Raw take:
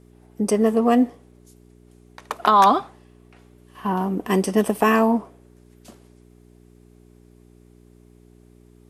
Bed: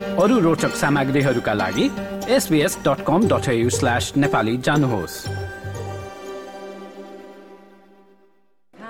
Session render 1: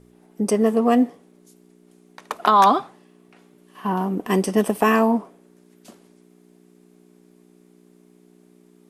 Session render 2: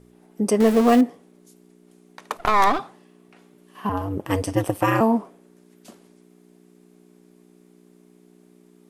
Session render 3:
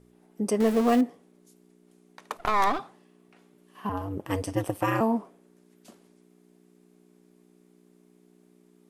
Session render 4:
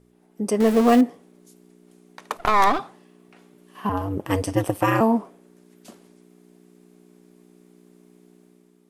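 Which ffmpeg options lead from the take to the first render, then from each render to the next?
ffmpeg -i in.wav -af "bandreject=frequency=60:width_type=h:width=4,bandreject=frequency=120:width_type=h:width=4" out.wav
ffmpeg -i in.wav -filter_complex "[0:a]asettb=1/sr,asplit=3[link_01][link_02][link_03];[link_01]atrim=end=0.604[link_04];[link_02]atrim=start=0.6:end=1.01,asetpts=PTS-STARTPTS,afade=type=in:duration=0.004:curve=qsin,afade=type=out:start_time=0.406:duration=0.004:curve=qsin,aeval=exprs='val(0)+0.5*0.075*sgn(val(0))':channel_layout=same[link_05];[link_03]atrim=start=1.006[link_06];[link_04][link_05]acrossfade=duration=0.004:curve1=hsin:curve2=qsin[link_07];[link_07][link_06]acrossfade=duration=0.004:curve1=qsin:curve2=hsin,asettb=1/sr,asplit=3[link_08][link_09][link_10];[link_08]atrim=end=2.374[link_11];[link_09]atrim=start=2.37:end=2.79,asetpts=PTS-STARTPTS,afade=type=in:duration=0.004:curve=qsin,afade=type=out:start_time=0.416:duration=0.004:curve=qsin,aeval=exprs='if(lt(val(0),0),0.251*val(0),val(0))':channel_layout=same[link_12];[link_10]atrim=start=2.786[link_13];[link_11][link_12]acrossfade=duration=0.004:curve1=hsin:curve2=qsin[link_14];[link_14][link_13]acrossfade=duration=0.004:curve1=qsin:curve2=hsin,asettb=1/sr,asplit=3[link_15][link_16][link_17];[link_15]atrim=end=3.894[link_18];[link_16]atrim=start=3.89:end=5.01,asetpts=PTS-STARTPTS,afade=type=in:duration=0.004:curve=qsin,afade=type=out:start_time=1.116:duration=0.004:curve=qsin,aeval=exprs='val(0)*sin(2*PI*97*n/s)':channel_layout=same[link_19];[link_17]atrim=start=5.006[link_20];[link_18][link_19]acrossfade=duration=0.004:curve1=hsin:curve2=qsin[link_21];[link_21][link_20]acrossfade=duration=0.004:curve1=qsin:curve2=hsin" out.wav
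ffmpeg -i in.wav -af "volume=-6dB" out.wav
ffmpeg -i in.wav -af "dynaudnorm=framelen=160:gausssize=7:maxgain=6.5dB" out.wav

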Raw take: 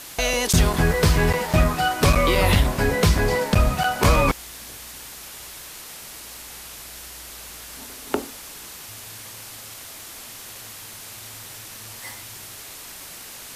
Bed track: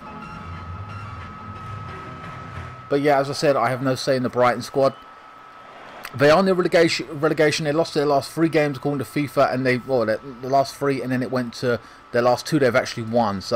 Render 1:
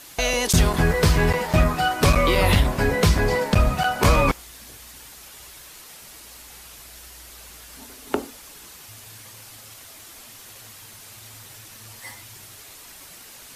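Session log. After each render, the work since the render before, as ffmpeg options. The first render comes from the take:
ffmpeg -i in.wav -af "afftdn=noise_reduction=6:noise_floor=-40" out.wav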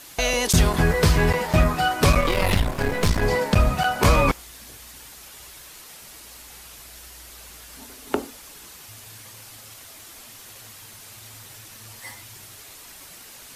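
ffmpeg -i in.wav -filter_complex "[0:a]asettb=1/sr,asplit=3[link_01][link_02][link_03];[link_01]atrim=end=2.204[link_04];[link_02]atrim=start=2.2:end=3.23,asetpts=PTS-STARTPTS,afade=type=in:duration=0.004:curve=qsin,afade=type=out:start_time=1.026:duration=0.004:curve=qsin,aeval=exprs='if(lt(val(0),0),0.251*val(0),val(0))':channel_layout=same[link_05];[link_03]atrim=start=3.226[link_06];[link_04][link_05]acrossfade=duration=0.004:curve1=hsin:curve2=qsin[link_07];[link_07][link_06]acrossfade=duration=0.004:curve1=qsin:curve2=hsin" out.wav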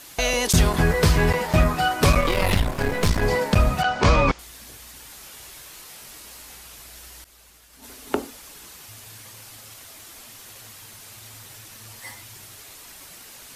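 ffmpeg -i in.wav -filter_complex "[0:a]asettb=1/sr,asplit=3[link_01][link_02][link_03];[link_01]atrim=end=3.824[link_04];[link_02]atrim=start=3.82:end=4.39,asetpts=PTS-STARTPTS,afade=type=in:duration=0.004:curve=qsin,afade=type=out:start_time=0.566:duration=0.004:curve=qsin,lowpass=frequency=6300:width=0.5412,lowpass=frequency=6300:width=1.3066[link_05];[link_03]atrim=start=4.386[link_06];[link_04][link_05]acrossfade=duration=0.004:curve1=hsin:curve2=qsin[link_07];[link_07][link_06]acrossfade=duration=0.004:curve1=qsin:curve2=hsin,asettb=1/sr,asplit=3[link_08][link_09][link_10];[link_08]atrim=end=5.074[link_11];[link_09]atrim=start=5.07:end=6.55,asetpts=PTS-STARTPTS,afade=type=in:duration=0.004:curve=qsin,afade=type=out:start_time=1.476:duration=0.004:curve=qsin,asplit=2[link_12][link_13];[link_13]adelay=23,volume=-6dB[link_14];[link_12][link_14]amix=inputs=2:normalize=0,atrim=end_sample=65268[link_15];[link_10]atrim=start=6.546[link_16];[link_11][link_15]acrossfade=duration=0.004:curve1=hsin:curve2=qsin[link_17];[link_17][link_16]acrossfade=duration=0.004:curve1=qsin:curve2=hsin,asettb=1/sr,asplit=3[link_18][link_19][link_20];[link_18]atrim=end=7.244[link_21];[link_19]atrim=start=7.24:end=7.84,asetpts=PTS-STARTPTS,afade=type=in:duration=0.004:curve=qsin,afade=type=out:start_time=0.596:duration=0.004:curve=qsin,agate=range=-33dB:threshold=-37dB:ratio=3:release=100:detection=peak[link_22];[link_20]atrim=start=7.836[link_23];[link_21][link_22]acrossfade=duration=0.004:curve1=hsin:curve2=qsin[link_24];[link_24][link_23]acrossfade=duration=0.004:curve1=qsin:curve2=hsin" out.wav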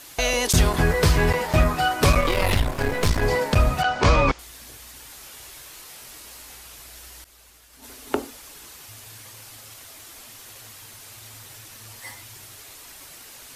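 ffmpeg -i in.wav -af "equalizer=frequency=190:width=6.2:gain=-9" out.wav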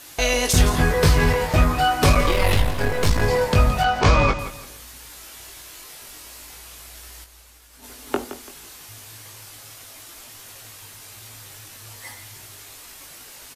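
ffmpeg -i in.wav -filter_complex "[0:a]asplit=2[link_01][link_02];[link_02]adelay=20,volume=-5.5dB[link_03];[link_01][link_03]amix=inputs=2:normalize=0,aecho=1:1:169|338|507:0.237|0.0688|0.0199" out.wav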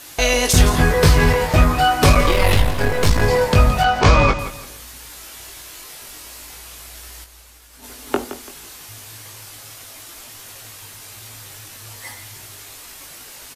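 ffmpeg -i in.wav -af "volume=3.5dB" out.wav

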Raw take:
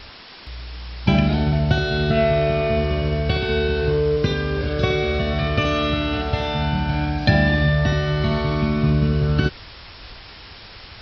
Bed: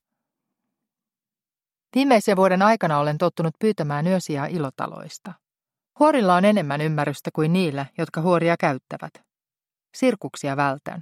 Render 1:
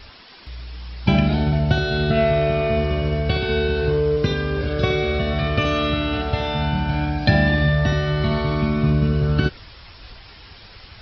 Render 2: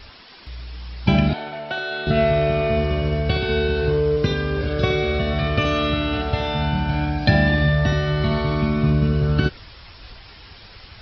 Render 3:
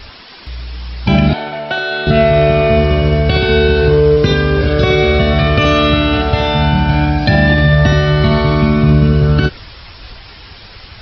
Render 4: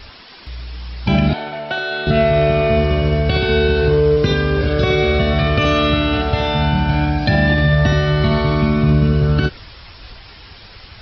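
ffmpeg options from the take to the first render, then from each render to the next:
ffmpeg -i in.wav -af "afftdn=noise_reduction=6:noise_floor=-41" out.wav
ffmpeg -i in.wav -filter_complex "[0:a]asettb=1/sr,asplit=3[link_01][link_02][link_03];[link_01]atrim=end=1.334[link_04];[link_02]atrim=start=1.33:end=2.07,asetpts=PTS-STARTPTS,afade=type=in:duration=0.004:curve=qsin,afade=type=out:start_time=0.736:duration=0.004:curve=qsin,highpass=600,lowpass=3400[link_05];[link_03]atrim=start=2.066[link_06];[link_04][link_05]acrossfade=duration=0.004:curve1=hsin:curve2=qsin[link_07];[link_07][link_06]acrossfade=duration=0.004:curve1=qsin:curve2=hsin" out.wav
ffmpeg -i in.wav -af "dynaudnorm=framelen=260:gausssize=17:maxgain=3.5dB,alimiter=level_in=8.5dB:limit=-1dB:release=50:level=0:latency=1" out.wav
ffmpeg -i in.wav -af "volume=-4dB" out.wav

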